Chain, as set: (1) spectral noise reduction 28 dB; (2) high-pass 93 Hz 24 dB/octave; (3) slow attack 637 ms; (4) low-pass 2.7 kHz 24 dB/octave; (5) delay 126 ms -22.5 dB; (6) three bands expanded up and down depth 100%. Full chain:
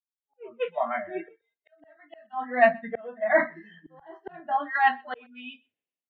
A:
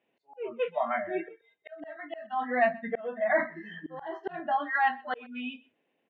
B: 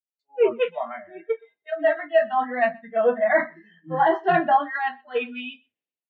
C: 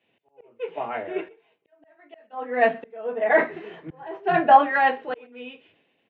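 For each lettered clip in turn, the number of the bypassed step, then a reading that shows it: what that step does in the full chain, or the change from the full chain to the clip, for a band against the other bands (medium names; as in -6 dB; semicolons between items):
6, 250 Hz band +3.5 dB; 3, crest factor change -7.5 dB; 1, 2 kHz band -3.5 dB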